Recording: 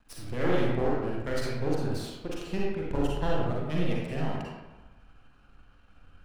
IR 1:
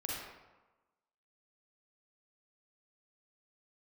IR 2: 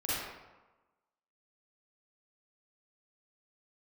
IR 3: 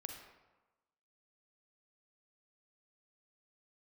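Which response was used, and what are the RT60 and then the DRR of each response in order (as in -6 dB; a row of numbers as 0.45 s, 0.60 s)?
1; 1.1 s, 1.1 s, 1.1 s; -4.5 dB, -10.5 dB, 3.0 dB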